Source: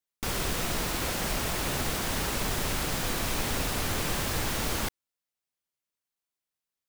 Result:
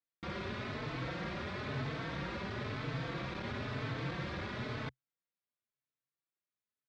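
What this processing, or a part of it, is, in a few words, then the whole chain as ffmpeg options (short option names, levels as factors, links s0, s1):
barber-pole flanger into a guitar amplifier: -filter_complex "[0:a]asplit=2[s0][s1];[s1]adelay=4,afreqshift=1[s2];[s0][s2]amix=inputs=2:normalize=1,asoftclip=type=tanh:threshold=0.0355,highpass=90,equalizer=f=130:t=q:w=4:g=9,equalizer=f=810:t=q:w=4:g=-6,equalizer=f=2900:t=q:w=4:g=-7,lowpass=f=3600:w=0.5412,lowpass=f=3600:w=1.3066,volume=0.841"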